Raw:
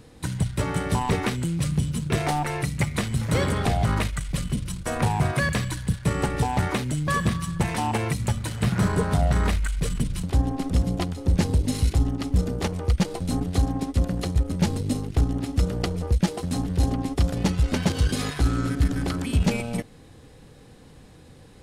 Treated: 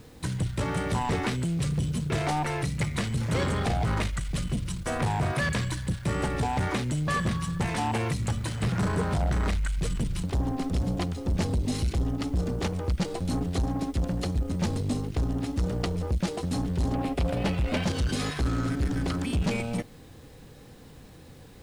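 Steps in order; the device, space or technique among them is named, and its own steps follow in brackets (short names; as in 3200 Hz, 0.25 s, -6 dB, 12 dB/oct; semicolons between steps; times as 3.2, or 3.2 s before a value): 16.95–17.84 fifteen-band EQ 630 Hz +10 dB, 2500 Hz +8 dB, 6300 Hz -8 dB; compact cassette (soft clip -21.5 dBFS, distortion -10 dB; LPF 9300 Hz 12 dB/oct; wow and flutter 29 cents; white noise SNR 37 dB)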